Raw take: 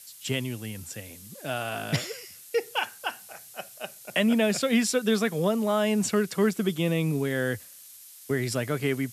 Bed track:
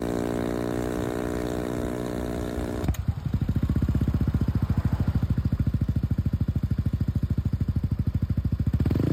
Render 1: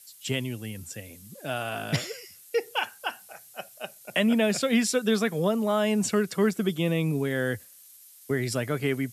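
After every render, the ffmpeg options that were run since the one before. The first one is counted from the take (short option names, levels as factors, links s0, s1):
-af "afftdn=nr=6:nf=-49"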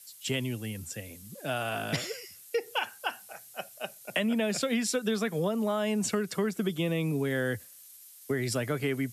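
-filter_complex "[0:a]acrossover=split=180|1300[s0][s1][s2];[s0]alimiter=level_in=2.37:limit=0.0631:level=0:latency=1,volume=0.422[s3];[s3][s1][s2]amix=inputs=3:normalize=0,acompressor=threshold=0.0562:ratio=6"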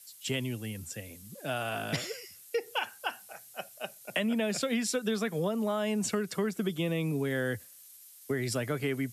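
-af "volume=0.841"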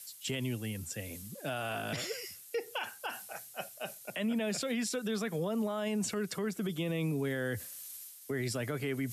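-af "alimiter=level_in=1.26:limit=0.0631:level=0:latency=1:release=41,volume=0.794,areverse,acompressor=mode=upward:threshold=0.0141:ratio=2.5,areverse"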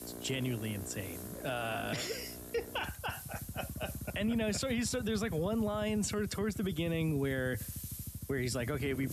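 -filter_complex "[1:a]volume=0.112[s0];[0:a][s0]amix=inputs=2:normalize=0"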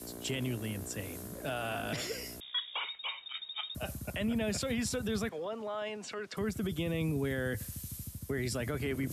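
-filter_complex "[0:a]asettb=1/sr,asplit=3[s0][s1][s2];[s0]atrim=end=2.404[s3];[s1]atrim=start=2.4:end=3.75,asetpts=PTS-STARTPTS,afade=t=in:d=0.004:c=qsin,afade=t=out:st=1.346:d=0.004:c=qsin,lowpass=f=3200:t=q:w=0.5098,lowpass=f=3200:t=q:w=0.6013,lowpass=f=3200:t=q:w=0.9,lowpass=f=3200:t=q:w=2.563,afreqshift=-3800[s4];[s2]atrim=start=3.746[s5];[s3][s4]acrossfade=d=0.004:c1=hsin:c2=qsin[s6];[s6][s5]acrossfade=d=0.004:c1=qsin:c2=hsin,asettb=1/sr,asplit=3[s7][s8][s9];[s7]atrim=end=5.294[s10];[s8]atrim=start=5.29:end=6.37,asetpts=PTS-STARTPTS,afade=t=in:d=0.004:c=qsin,afade=t=out:st=1.076:d=0.004:c=qsin,highpass=470,lowpass=4200[s11];[s9]atrim=start=6.366[s12];[s10][s11]acrossfade=d=0.004:c1=hsin:c2=qsin[s13];[s13][s12]acrossfade=d=0.004:c1=qsin:c2=hsin"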